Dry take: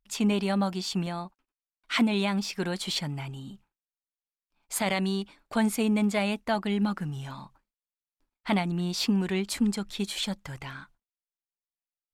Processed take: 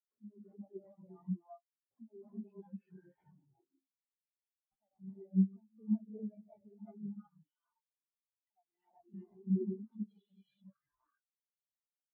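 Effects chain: reverb removal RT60 0.6 s; 7.08–9.14 s: high-pass 350 Hz 12 dB/octave; low-pass that closes with the level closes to 1.4 kHz, closed at -26.5 dBFS; tilt EQ +4 dB/octave; band-stop 2.1 kHz, Q 25; compression 16:1, threshold -33 dBFS, peak gain reduction 10.5 dB; peak limiter -28.5 dBFS, peak gain reduction 8 dB; decimation with a swept rate 11×, swing 100% 0.67 Hz; gated-style reverb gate 420 ms rising, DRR -4.5 dB; spectral contrast expander 4:1; trim +2.5 dB

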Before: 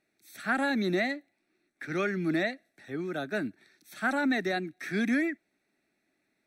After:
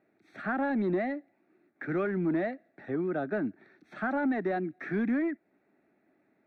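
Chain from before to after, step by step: high-pass 140 Hz 6 dB/octave; in parallel at -4.5 dB: overload inside the chain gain 30 dB; on the sum: compression 2:1, threshold -38 dBFS, peak gain reduction 9 dB; low-pass 1.2 kHz 12 dB/octave; trim +6 dB

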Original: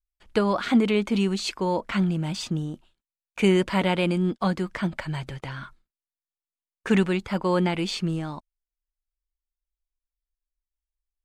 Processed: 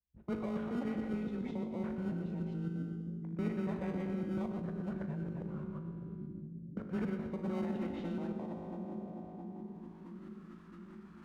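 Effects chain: time reversed locally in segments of 141 ms; treble shelf 2.9 kHz -10.5 dB; feedback comb 51 Hz, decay 1.4 s, harmonics all, mix 80%; frequency shift +16 Hz; in parallel at -5 dB: sample-and-hold 26×; on the sum: dynamic bell 1.2 kHz, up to -4 dB, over -50 dBFS, Q 1.2; band-pass sweep 210 Hz -> 1.4 kHz, 7.30–10.42 s; reverse; upward compressor, threshold -53 dBFS; reverse; two-band feedback delay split 380 Hz, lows 669 ms, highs 122 ms, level -8.5 dB; formant shift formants -3 st; spectrum-flattening compressor 2:1; trim -2 dB

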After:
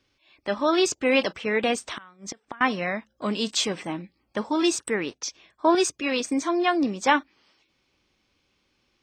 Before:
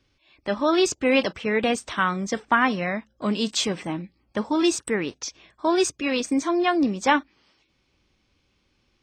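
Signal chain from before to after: bass shelf 170 Hz -9 dB; 1.81–2.61 s: inverted gate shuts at -22 dBFS, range -26 dB; 5.13–5.75 s: three bands expanded up and down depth 40%

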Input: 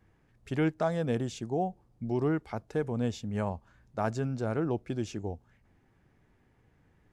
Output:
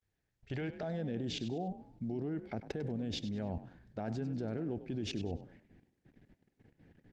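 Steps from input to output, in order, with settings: peak limiter -26 dBFS, peak gain reduction 10 dB; peaking EQ 240 Hz -6 dB 1.4 oct, from 0.83 s +6 dB; expander -57 dBFS; level held to a coarse grid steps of 23 dB; FFT filter 760 Hz 0 dB, 1.1 kHz -13 dB, 1.6 kHz +1 dB, 4.5 kHz +2 dB, 8.8 kHz -14 dB; frequency-shifting echo 98 ms, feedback 32%, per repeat +43 Hz, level -13 dB; trim +9 dB; Opus 24 kbps 48 kHz

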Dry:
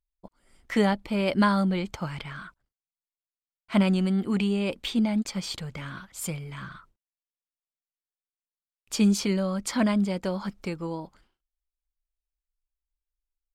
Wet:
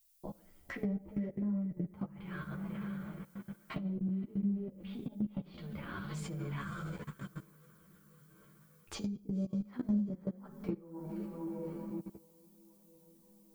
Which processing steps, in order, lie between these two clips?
in parallel at -11 dB: overload inside the chain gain 25.5 dB; on the sum: treble shelf 2 kHz -5 dB; low-pass that closes with the level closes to 330 Hz, closed at -23 dBFS; echo that smears into a reverb 517 ms, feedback 42%, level -12 dB; on a send at -3.5 dB: reverberation RT60 0.60 s, pre-delay 3 ms; on the sum: level held to a coarse grid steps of 23 dB; treble shelf 5.8 kHz -8 dB; added noise violet -74 dBFS; compression 6:1, threshold -40 dBFS, peak gain reduction 17.5 dB; chorus voices 4, 0.49 Hz, delay 11 ms, depth 4.6 ms; trim +8.5 dB

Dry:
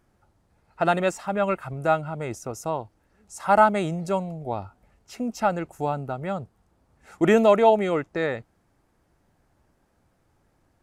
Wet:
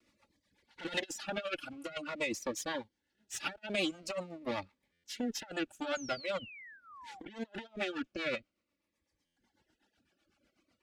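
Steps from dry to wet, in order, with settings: comb filter that takes the minimum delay 3.5 ms; rotary cabinet horn 8 Hz; compressor with a negative ratio -30 dBFS, ratio -0.5; treble shelf 5.8 kHz -5 dB, from 6.30 s -11.5 dB; reverb removal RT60 1.5 s; frequency weighting D; 5.95–7.20 s: painted sound fall 730–6900 Hz -45 dBFS; buffer glitch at 4.92/9.25 s, samples 512, times 9; Shepard-style phaser falling 0.46 Hz; trim -4.5 dB

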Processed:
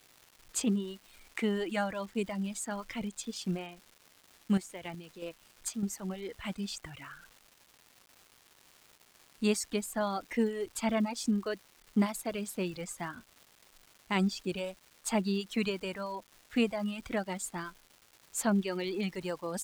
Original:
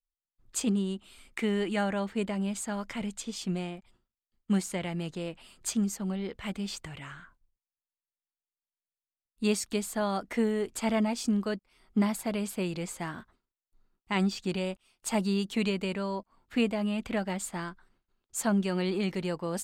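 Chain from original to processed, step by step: reverb removal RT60 1.7 s; 3.74–5.83 s: square tremolo 2.7 Hz, depth 60%, duty 25%; crackle 560 per s -45 dBFS; trim -1 dB

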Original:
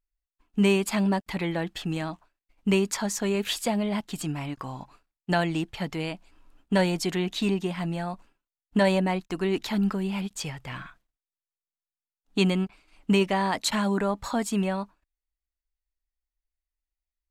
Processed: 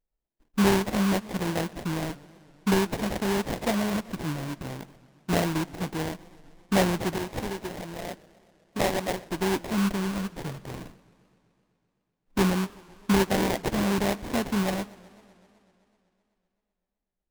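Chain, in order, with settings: 7.16–9.30 s: frequency weighting A; sample-rate reducer 1.3 kHz, jitter 20%; modulated delay 127 ms, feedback 74%, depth 220 cents, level -22.5 dB

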